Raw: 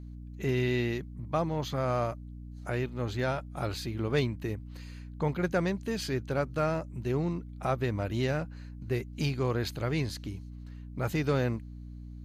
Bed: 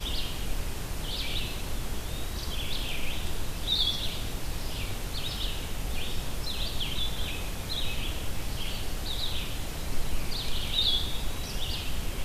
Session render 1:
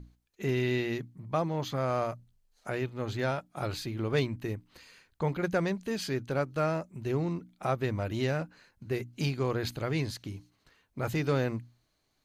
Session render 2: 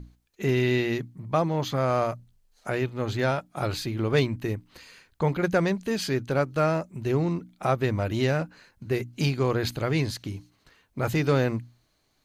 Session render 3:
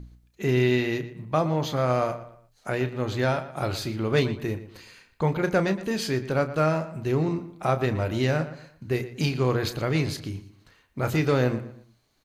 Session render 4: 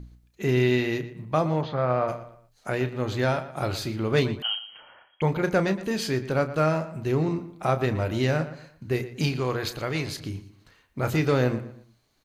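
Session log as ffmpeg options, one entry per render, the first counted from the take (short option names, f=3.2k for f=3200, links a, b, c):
-af "bandreject=f=60:t=h:w=6,bandreject=f=120:t=h:w=6,bandreject=f=180:t=h:w=6,bandreject=f=240:t=h:w=6,bandreject=f=300:t=h:w=6"
-af "volume=5.5dB"
-filter_complex "[0:a]asplit=2[a][b];[b]adelay=32,volume=-11dB[c];[a][c]amix=inputs=2:normalize=0,asplit=2[d][e];[e]adelay=117,lowpass=f=3.7k:p=1,volume=-13.5dB,asplit=2[f][g];[g]adelay=117,lowpass=f=3.7k:p=1,volume=0.35,asplit=2[h][i];[i]adelay=117,lowpass=f=3.7k:p=1,volume=0.35[j];[d][f][h][j]amix=inputs=4:normalize=0"
-filter_complex "[0:a]asplit=3[a][b][c];[a]afade=t=out:st=1.61:d=0.02[d];[b]highpass=100,equalizer=f=290:t=q:w=4:g=-7,equalizer=f=2.2k:t=q:w=4:g=-4,equalizer=f=3.1k:t=q:w=4:g=-7,lowpass=f=3.5k:w=0.5412,lowpass=f=3.5k:w=1.3066,afade=t=in:st=1.61:d=0.02,afade=t=out:st=2.07:d=0.02[e];[c]afade=t=in:st=2.07:d=0.02[f];[d][e][f]amix=inputs=3:normalize=0,asettb=1/sr,asplit=3[g][h][i];[g]atrim=end=4.424[j];[h]atrim=start=4.42:end=5.22,asetpts=PTS-STARTPTS,afade=t=in:d=0.004:c=qsin,afade=t=out:st=0.796:d=0.004:c=qsin,lowpass=f=2.8k:t=q:w=0.5098,lowpass=f=2.8k:t=q:w=0.6013,lowpass=f=2.8k:t=q:w=0.9,lowpass=f=2.8k:t=q:w=2.563,afreqshift=-3300[k];[i]atrim=start=5.216[l];[j][k]acrossfade=d=0.004:c1=hsin:c2=qsin[m];[m][l]acrossfade=d=0.004:c1=qsin:c2=hsin,asettb=1/sr,asplit=3[n][o][p];[n]atrim=end=9.404[q];[o]atrim=start=9.4:end=10.21,asetpts=PTS-STARTPTS,afade=t=in:d=0.004:c=qsin,afade=t=out:st=0.806:d=0.004:c=qsin,equalizer=f=160:w=0.39:g=-6[r];[p]atrim=start=10.206[s];[q][r]acrossfade=d=0.004:c1=hsin:c2=qsin[t];[t][s]acrossfade=d=0.004:c1=qsin:c2=hsin"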